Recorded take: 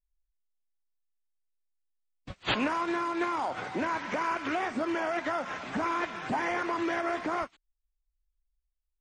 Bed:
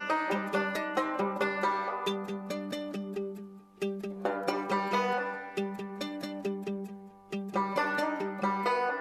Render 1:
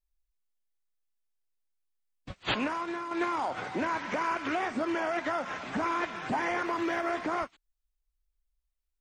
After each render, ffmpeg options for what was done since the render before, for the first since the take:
-filter_complex "[0:a]asettb=1/sr,asplit=3[s0][s1][s2];[s0]atrim=end=6.664[s3];[s1]atrim=start=6.66:end=7.1,asetpts=PTS-STARTPTS,afade=t=in:d=0.004:c=qsin,afade=t=out:st=0.436:d=0.004:c=qsin,aeval=exprs='sgn(val(0))*max(abs(val(0))-0.00119,0)':c=same[s4];[s2]atrim=start=7.096[s5];[s3][s4]acrossfade=d=0.004:c1=hsin:c2=qsin[s6];[s6][s5]acrossfade=d=0.004:c1=qsin:c2=hsin,asplit=2[s7][s8];[s7]atrim=end=3.11,asetpts=PTS-STARTPTS,afade=t=out:st=2.33:d=0.78:silence=0.446684[s9];[s8]atrim=start=3.11,asetpts=PTS-STARTPTS,afade=t=in:d=0.004:c=hsin:silence=0.446684[s10];[s9][s10]concat=n=2:v=0:a=1"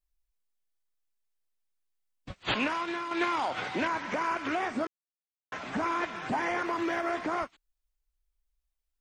-filter_complex "[0:a]asettb=1/sr,asplit=3[s0][s1][s2];[s0]atrim=end=2.554[s3];[s1]atrim=start=2.55:end=3.88,asetpts=PTS-STARTPTS,afade=t=in:d=0.004:c=qsin,afade=t=out:st=1.326:d=0.004:c=qsin,equalizer=f=3200:w=0.85:g=8[s4];[s2]atrim=start=3.876[s5];[s3][s4]acrossfade=d=0.004:c1=hsin:c2=qsin[s6];[s6][s5]acrossfade=d=0.004:c1=qsin:c2=hsin,asplit=3[s7][s8][s9];[s7]atrim=end=4.87,asetpts=PTS-STARTPTS,afade=t=out:st=4.866:d=0.004:c=hsin[s10];[s8]atrim=start=4.87:end=5.52,asetpts=PTS-STARTPTS,volume=0[s11];[s9]atrim=start=5.52,asetpts=PTS-STARTPTS,afade=t=in:d=0.004:c=hsin[s12];[s10][s11][s12]concat=n=3:v=0:a=1"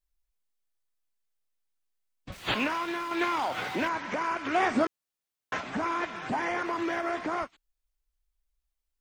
-filter_complex "[0:a]asettb=1/sr,asplit=3[s0][s1][s2];[s0]atrim=end=2.324[s3];[s1]atrim=start=2.32:end=3.89,asetpts=PTS-STARTPTS,afade=t=in:d=0.004:c=qsin,afade=t=out:st=1.566:d=0.004:c=qsin,aeval=exprs='val(0)+0.5*0.00708*sgn(val(0))':c=same[s4];[s2]atrim=start=3.886[s5];[s3][s4]acrossfade=d=0.004:c1=hsin:c2=qsin[s6];[s6][s5]acrossfade=d=0.004:c1=qsin:c2=hsin,asplit=3[s7][s8][s9];[s7]afade=t=out:st=4.54:d=0.02[s10];[s8]acontrast=62,afade=t=in:st=4.54:d=0.02,afade=t=out:st=5.6:d=0.02[s11];[s9]afade=t=in:st=5.6:d=0.02[s12];[s10][s11][s12]amix=inputs=3:normalize=0"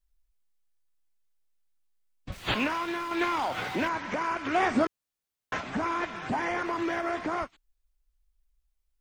-af "lowshelf=f=110:g=8.5"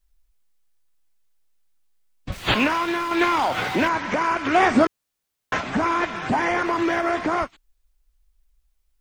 -af "volume=2.51"

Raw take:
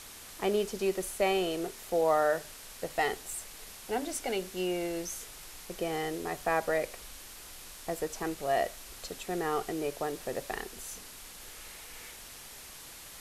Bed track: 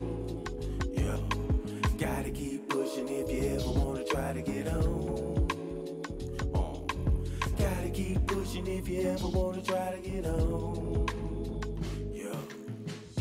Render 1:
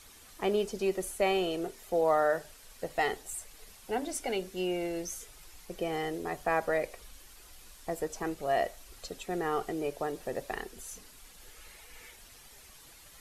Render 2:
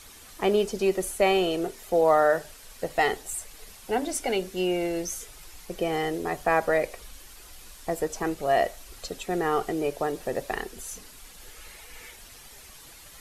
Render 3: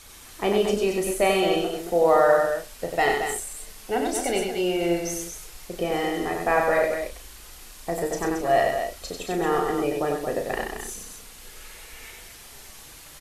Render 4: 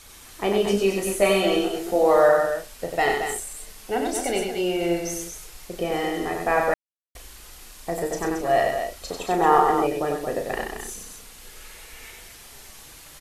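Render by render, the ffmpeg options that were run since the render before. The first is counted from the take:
-af "afftdn=nr=9:nf=-48"
-af "volume=2"
-filter_complex "[0:a]asplit=2[s0][s1];[s1]adelay=35,volume=0.447[s2];[s0][s2]amix=inputs=2:normalize=0,aecho=1:1:93.29|224.5:0.631|0.447"
-filter_complex "[0:a]asettb=1/sr,asplit=3[s0][s1][s2];[s0]atrim=end=0.654[s3];[s1]atrim=start=0.65:end=2.29,asetpts=PTS-STARTPTS,afade=t=in:d=0.004:c=qsin,afade=t=out:st=1.636:d=0.004:c=qsin,asplit=2[s4][s5];[s5]adelay=15,volume=0.75[s6];[s4][s6]amix=inputs=2:normalize=0,atrim=end_sample=72324[s7];[s2]atrim=start=2.286[s8];[s3][s7]acrossfade=d=0.004:c1=hsin:c2=qsin[s9];[s9][s8]acrossfade=d=0.004:c1=qsin:c2=hsin,asettb=1/sr,asplit=3[s10][s11][s12];[s10]atrim=end=9.094[s13];[s11]atrim=start=9.09:end=9.87,asetpts=PTS-STARTPTS,afade=t=in:d=0.004:c=qsin,afade=t=out:st=0.776:d=0.004:c=qsin,equalizer=f=920:t=o:w=0.99:g=13[s14];[s12]atrim=start=9.866[s15];[s13][s14]acrossfade=d=0.004:c1=hsin:c2=qsin[s16];[s16][s15]acrossfade=d=0.004:c1=qsin:c2=hsin,asplit=3[s17][s18][s19];[s17]atrim=end=6.74,asetpts=PTS-STARTPTS,afade=t=out:st=6.736:d=0.004:c=hsin[s20];[s18]atrim=start=6.74:end=7.15,asetpts=PTS-STARTPTS,volume=0[s21];[s19]atrim=start=7.15,asetpts=PTS-STARTPTS,afade=t=in:d=0.004:c=hsin[s22];[s20][s21][s22]concat=n=3:v=0:a=1"

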